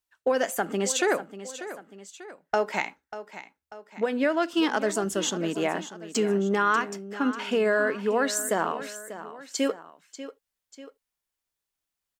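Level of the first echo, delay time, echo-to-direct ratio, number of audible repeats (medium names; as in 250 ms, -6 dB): -13.5 dB, 591 ms, -12.5 dB, 2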